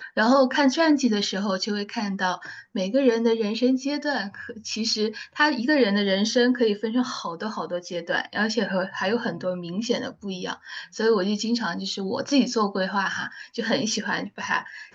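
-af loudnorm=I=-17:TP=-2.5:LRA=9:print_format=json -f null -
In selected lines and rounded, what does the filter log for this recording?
"input_i" : "-24.5",
"input_tp" : "-7.4",
"input_lra" : "3.7",
"input_thresh" : "-34.6",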